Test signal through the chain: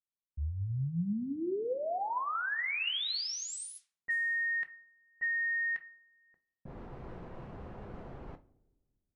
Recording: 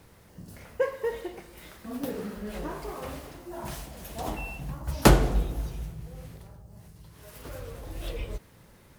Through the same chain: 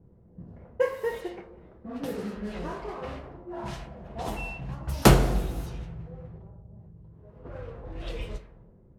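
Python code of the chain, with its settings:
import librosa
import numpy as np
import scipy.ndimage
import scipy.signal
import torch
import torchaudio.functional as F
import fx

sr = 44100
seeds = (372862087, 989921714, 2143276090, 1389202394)

y = fx.rev_double_slope(x, sr, seeds[0], early_s=0.26, late_s=1.8, knee_db=-18, drr_db=6.0)
y = fx.env_lowpass(y, sr, base_hz=310.0, full_db=-28.0)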